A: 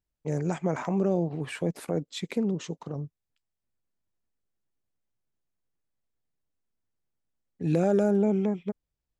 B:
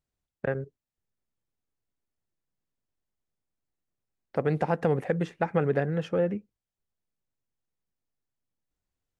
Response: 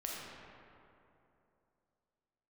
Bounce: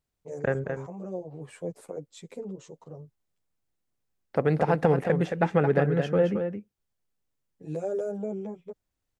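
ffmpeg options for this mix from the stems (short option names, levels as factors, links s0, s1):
-filter_complex "[0:a]equalizer=f=125:t=o:w=1:g=8,equalizer=f=500:t=o:w=1:g=12,equalizer=f=1000:t=o:w=1:g=5,equalizer=f=8000:t=o:w=1:g=11,asplit=2[s0][s1];[s1]adelay=10.1,afreqshift=1.4[s2];[s0][s2]amix=inputs=2:normalize=1,volume=0.211[s3];[1:a]volume=1.33,asplit=3[s4][s5][s6];[s5]volume=0.447[s7];[s6]apad=whole_len=406004[s8];[s3][s8]sidechaincompress=threshold=0.0562:ratio=8:attack=6.1:release=1340[s9];[s7]aecho=0:1:221:1[s10];[s9][s4][s10]amix=inputs=3:normalize=0"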